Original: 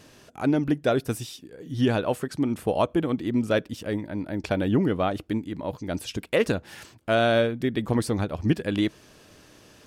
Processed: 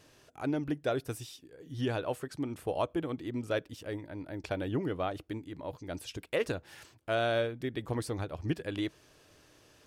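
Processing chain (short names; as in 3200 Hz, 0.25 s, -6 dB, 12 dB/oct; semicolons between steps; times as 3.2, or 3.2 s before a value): bell 210 Hz -11.5 dB 0.36 oct; gain -8 dB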